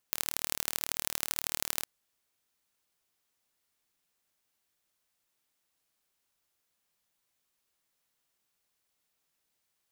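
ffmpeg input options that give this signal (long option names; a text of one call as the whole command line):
ffmpeg -f lavfi -i "aevalsrc='0.841*eq(mod(n,1157),0)*(0.5+0.5*eq(mod(n,3471),0))':duration=1.73:sample_rate=44100" out.wav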